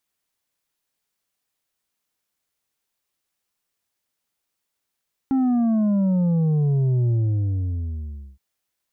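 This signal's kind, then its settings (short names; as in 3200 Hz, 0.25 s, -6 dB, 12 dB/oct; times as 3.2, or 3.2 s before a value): sub drop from 270 Hz, over 3.07 s, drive 5.5 dB, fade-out 1.28 s, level -17.5 dB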